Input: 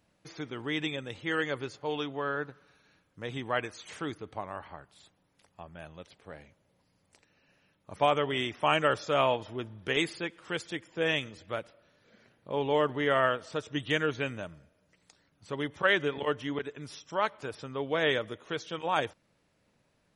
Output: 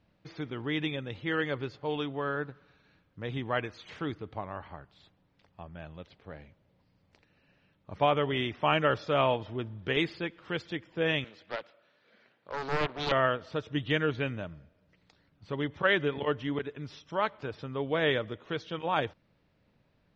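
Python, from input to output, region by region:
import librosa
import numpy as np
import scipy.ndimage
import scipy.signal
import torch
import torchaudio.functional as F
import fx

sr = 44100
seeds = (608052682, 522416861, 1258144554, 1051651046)

y = fx.chain(x, sr, fx.weighting(curve='A'),
    fx.doppler_dist(depth_ms=0.71), at=(11.24, 13.12))
y = scipy.signal.sosfilt(scipy.signal.butter(4, 4700.0, 'lowpass', fs=sr, output='sos'), y)
y = fx.low_shelf(y, sr, hz=220.0, db=7.5)
y = y * librosa.db_to_amplitude(-1.0)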